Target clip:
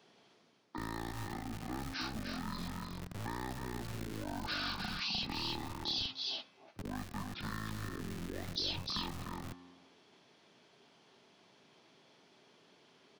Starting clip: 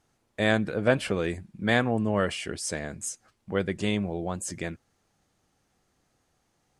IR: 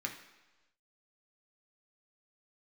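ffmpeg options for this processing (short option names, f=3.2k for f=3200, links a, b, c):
-filter_complex "[0:a]bandreject=f=172.2:t=h:w=4,bandreject=f=344.4:t=h:w=4,bandreject=f=516.6:t=h:w=4,bandreject=f=688.8:t=h:w=4,bandreject=f=861:t=h:w=4,bandreject=f=1.0332k:t=h:w=4,bandreject=f=1.2054k:t=h:w=4,bandreject=f=1.3776k:t=h:w=4,bandreject=f=1.5498k:t=h:w=4,bandreject=f=1.722k:t=h:w=4,bandreject=f=1.8942k:t=h:w=4,bandreject=f=2.0664k:t=h:w=4,bandreject=f=2.2386k:t=h:w=4,bandreject=f=2.4108k:t=h:w=4,bandreject=f=2.583k:t=h:w=4,bandreject=f=2.7552k:t=h:w=4,bandreject=f=2.9274k:t=h:w=4,bandreject=f=3.0996k:t=h:w=4,bandreject=f=3.2718k:t=h:w=4,bandreject=f=3.444k:t=h:w=4,bandreject=f=3.6162k:t=h:w=4,bandreject=f=3.7884k:t=h:w=4,bandreject=f=3.9606k:t=h:w=4,bandreject=f=4.1328k:t=h:w=4,bandreject=f=4.305k:t=h:w=4,bandreject=f=4.4772k:t=h:w=4,bandreject=f=4.6494k:t=h:w=4,bandreject=f=4.8216k:t=h:w=4,bandreject=f=4.9938k:t=h:w=4,bandreject=f=5.166k:t=h:w=4,areverse,acompressor=threshold=-34dB:ratio=10,areverse,aecho=1:1:155:0.447,asetrate=22712,aresample=44100,acrossover=split=160|6000[a][b][c];[a]acrusher=bits=5:dc=4:mix=0:aa=0.000001[d];[d][b][c]amix=inputs=3:normalize=0,acrossover=split=100|1300|2900[e][f][g][h];[e]acompressor=threshold=-56dB:ratio=4[i];[f]acompressor=threshold=-52dB:ratio=4[j];[g]acompressor=threshold=-59dB:ratio=4[k];[h]acompressor=threshold=-46dB:ratio=4[l];[i][j][k][l]amix=inputs=4:normalize=0,volume=9dB"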